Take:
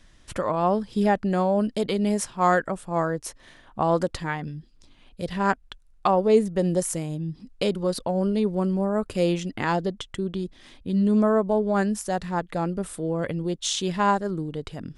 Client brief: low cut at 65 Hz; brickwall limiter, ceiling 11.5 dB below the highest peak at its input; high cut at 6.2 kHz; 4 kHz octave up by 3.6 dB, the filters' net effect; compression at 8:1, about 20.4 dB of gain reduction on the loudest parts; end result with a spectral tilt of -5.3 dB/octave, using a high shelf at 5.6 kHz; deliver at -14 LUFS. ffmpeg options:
-af "highpass=65,lowpass=6200,equalizer=f=4000:t=o:g=6.5,highshelf=f=5600:g=-4,acompressor=threshold=0.0178:ratio=8,volume=21.1,alimiter=limit=0.631:level=0:latency=1"

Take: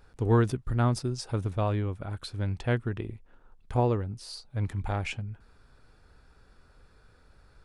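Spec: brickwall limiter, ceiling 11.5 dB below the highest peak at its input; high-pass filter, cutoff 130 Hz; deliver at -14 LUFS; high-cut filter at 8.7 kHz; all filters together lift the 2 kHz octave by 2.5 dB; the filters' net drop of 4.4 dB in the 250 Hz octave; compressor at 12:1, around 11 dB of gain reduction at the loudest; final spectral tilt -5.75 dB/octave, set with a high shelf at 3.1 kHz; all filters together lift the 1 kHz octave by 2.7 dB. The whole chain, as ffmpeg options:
-af "highpass=130,lowpass=8700,equalizer=f=250:t=o:g=-5.5,equalizer=f=1000:t=o:g=3.5,equalizer=f=2000:t=o:g=4,highshelf=f=3100:g=-5.5,acompressor=threshold=0.0316:ratio=12,volume=23.7,alimiter=limit=0.944:level=0:latency=1"

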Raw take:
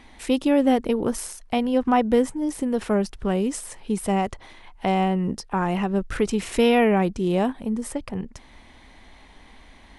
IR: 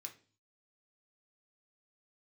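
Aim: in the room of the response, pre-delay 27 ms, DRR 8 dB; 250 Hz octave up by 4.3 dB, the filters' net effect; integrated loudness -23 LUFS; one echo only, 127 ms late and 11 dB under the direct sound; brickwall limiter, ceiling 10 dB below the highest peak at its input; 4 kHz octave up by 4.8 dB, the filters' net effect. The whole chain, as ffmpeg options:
-filter_complex "[0:a]equalizer=f=250:t=o:g=5,equalizer=f=4000:t=o:g=7,alimiter=limit=0.188:level=0:latency=1,aecho=1:1:127:0.282,asplit=2[s0][s1];[1:a]atrim=start_sample=2205,adelay=27[s2];[s1][s2]afir=irnorm=-1:irlink=0,volume=0.708[s3];[s0][s3]amix=inputs=2:normalize=0,volume=1.19"

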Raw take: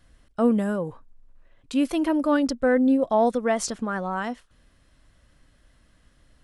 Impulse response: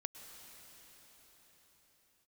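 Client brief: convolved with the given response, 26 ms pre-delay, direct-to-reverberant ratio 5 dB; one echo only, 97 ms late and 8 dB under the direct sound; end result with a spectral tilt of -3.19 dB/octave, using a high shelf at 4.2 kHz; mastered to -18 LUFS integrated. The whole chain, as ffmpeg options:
-filter_complex "[0:a]highshelf=f=4200:g=-5.5,aecho=1:1:97:0.398,asplit=2[s0][s1];[1:a]atrim=start_sample=2205,adelay=26[s2];[s1][s2]afir=irnorm=-1:irlink=0,volume=0.75[s3];[s0][s3]amix=inputs=2:normalize=0,volume=1.58"

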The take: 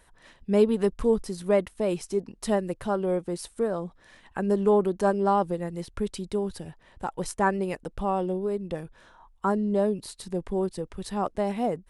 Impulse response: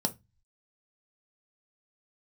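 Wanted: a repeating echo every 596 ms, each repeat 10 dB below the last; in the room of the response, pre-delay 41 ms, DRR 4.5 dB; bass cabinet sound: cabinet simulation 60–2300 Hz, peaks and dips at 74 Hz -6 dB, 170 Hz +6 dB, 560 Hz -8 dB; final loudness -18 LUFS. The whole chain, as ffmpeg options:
-filter_complex "[0:a]aecho=1:1:596|1192|1788|2384:0.316|0.101|0.0324|0.0104,asplit=2[s0][s1];[1:a]atrim=start_sample=2205,adelay=41[s2];[s1][s2]afir=irnorm=-1:irlink=0,volume=0.316[s3];[s0][s3]amix=inputs=2:normalize=0,highpass=f=60:w=0.5412,highpass=f=60:w=1.3066,equalizer=f=74:t=q:w=4:g=-6,equalizer=f=170:t=q:w=4:g=6,equalizer=f=560:t=q:w=4:g=-8,lowpass=f=2300:w=0.5412,lowpass=f=2300:w=1.3066,volume=1.58"

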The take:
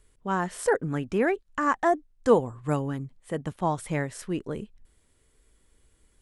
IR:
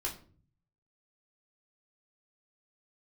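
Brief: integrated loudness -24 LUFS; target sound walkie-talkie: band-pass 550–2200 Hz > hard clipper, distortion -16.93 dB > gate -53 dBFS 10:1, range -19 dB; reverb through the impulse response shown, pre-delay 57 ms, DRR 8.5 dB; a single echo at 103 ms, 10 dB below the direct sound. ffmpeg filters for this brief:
-filter_complex "[0:a]aecho=1:1:103:0.316,asplit=2[s0][s1];[1:a]atrim=start_sample=2205,adelay=57[s2];[s1][s2]afir=irnorm=-1:irlink=0,volume=0.299[s3];[s0][s3]amix=inputs=2:normalize=0,highpass=550,lowpass=2200,asoftclip=type=hard:threshold=0.112,agate=range=0.112:threshold=0.00224:ratio=10,volume=2.24"

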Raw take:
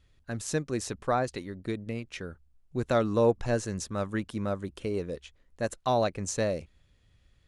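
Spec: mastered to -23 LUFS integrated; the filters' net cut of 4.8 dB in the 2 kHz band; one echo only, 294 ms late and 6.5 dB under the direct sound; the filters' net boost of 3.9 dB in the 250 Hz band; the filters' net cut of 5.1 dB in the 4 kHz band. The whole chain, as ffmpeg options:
-af "equalizer=f=250:t=o:g=5,equalizer=f=2000:t=o:g=-5.5,equalizer=f=4000:t=o:g=-5,aecho=1:1:294:0.473,volume=2"

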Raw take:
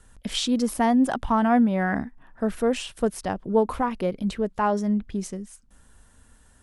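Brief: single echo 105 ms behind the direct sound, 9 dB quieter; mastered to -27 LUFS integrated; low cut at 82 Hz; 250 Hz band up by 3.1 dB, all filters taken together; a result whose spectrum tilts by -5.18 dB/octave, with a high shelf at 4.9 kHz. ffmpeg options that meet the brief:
-af "highpass=82,equalizer=f=250:t=o:g=3.5,highshelf=f=4900:g=4.5,aecho=1:1:105:0.355,volume=0.562"

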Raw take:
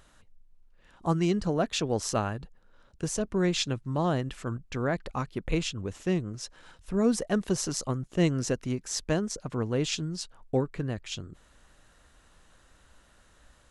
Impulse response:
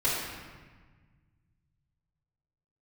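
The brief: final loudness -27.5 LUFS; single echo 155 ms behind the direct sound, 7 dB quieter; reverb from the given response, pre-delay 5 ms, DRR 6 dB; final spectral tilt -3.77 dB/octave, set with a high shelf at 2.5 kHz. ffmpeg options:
-filter_complex "[0:a]highshelf=f=2500:g=9,aecho=1:1:155:0.447,asplit=2[s0][s1];[1:a]atrim=start_sample=2205,adelay=5[s2];[s1][s2]afir=irnorm=-1:irlink=0,volume=0.141[s3];[s0][s3]amix=inputs=2:normalize=0,volume=0.891"

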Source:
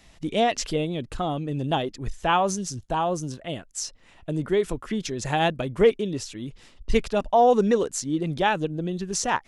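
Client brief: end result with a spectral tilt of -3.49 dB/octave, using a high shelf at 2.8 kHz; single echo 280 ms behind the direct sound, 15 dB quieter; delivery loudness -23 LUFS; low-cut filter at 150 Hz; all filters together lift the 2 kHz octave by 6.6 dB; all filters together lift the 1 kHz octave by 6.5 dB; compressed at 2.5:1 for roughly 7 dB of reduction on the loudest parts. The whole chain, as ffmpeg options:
-af "highpass=150,equalizer=f=1000:t=o:g=8,equalizer=f=2000:t=o:g=4,highshelf=f=2800:g=4.5,acompressor=threshold=0.1:ratio=2.5,aecho=1:1:280:0.178,volume=1.33"

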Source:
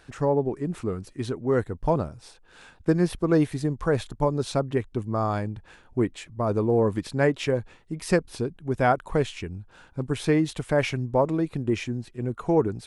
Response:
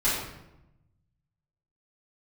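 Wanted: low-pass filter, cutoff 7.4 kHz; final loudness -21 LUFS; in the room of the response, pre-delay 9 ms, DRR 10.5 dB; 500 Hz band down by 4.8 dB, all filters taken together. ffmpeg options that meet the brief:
-filter_complex "[0:a]lowpass=7400,equalizer=f=500:t=o:g=-6,asplit=2[s0][s1];[1:a]atrim=start_sample=2205,adelay=9[s2];[s1][s2]afir=irnorm=-1:irlink=0,volume=0.0708[s3];[s0][s3]amix=inputs=2:normalize=0,volume=2.37"

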